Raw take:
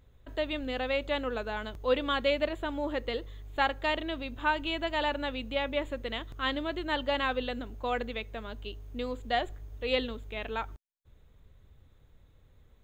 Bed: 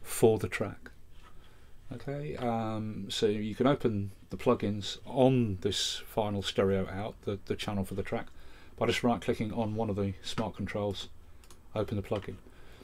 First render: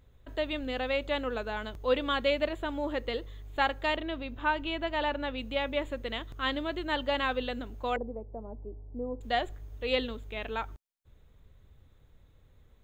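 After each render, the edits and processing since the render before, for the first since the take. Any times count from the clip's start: 3.96–5.38 s: peaking EQ 10 kHz -10.5 dB 1.7 oct; 7.96–9.21 s: Chebyshev low-pass 880 Hz, order 4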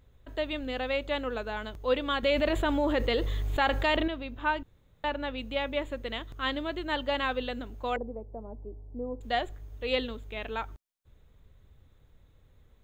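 2.23–4.08 s: level flattener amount 70%; 4.63–5.04 s: room tone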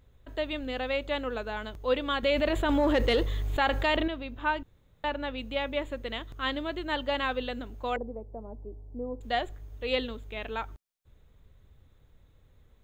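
2.69–3.23 s: waveshaping leveller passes 1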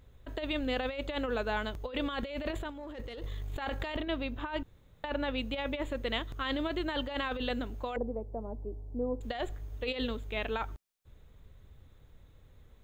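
peak limiter -21 dBFS, peak gain reduction 8 dB; compressor with a negative ratio -33 dBFS, ratio -0.5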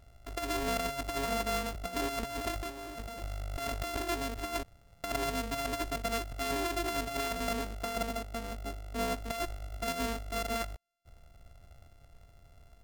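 sorted samples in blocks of 64 samples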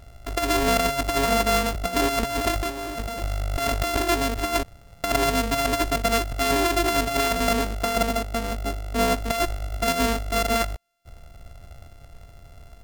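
trim +11.5 dB

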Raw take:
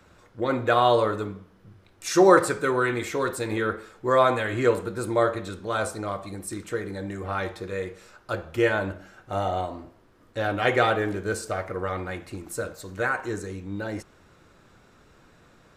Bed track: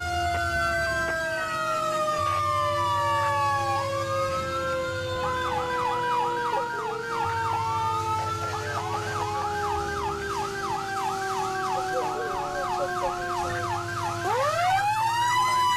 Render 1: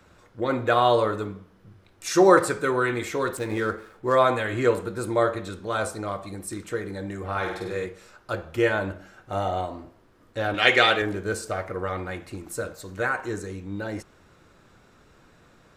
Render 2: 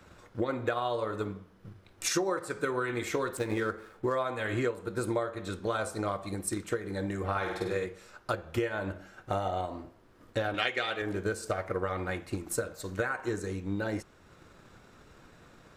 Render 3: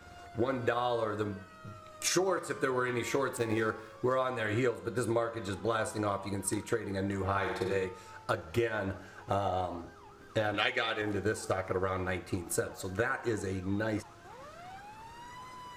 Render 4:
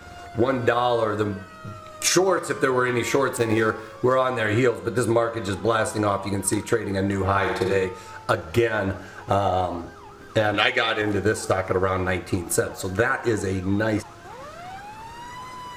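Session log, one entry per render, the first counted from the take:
3.37–4.15 s: median filter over 9 samples; 7.31–7.86 s: flutter echo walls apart 8.4 m, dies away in 0.7 s; 10.54–11.02 s: frequency weighting D
transient shaper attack +5 dB, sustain -3 dB; compression 10:1, threshold -27 dBFS, peak gain reduction 17.5 dB
add bed track -25.5 dB
trim +10 dB

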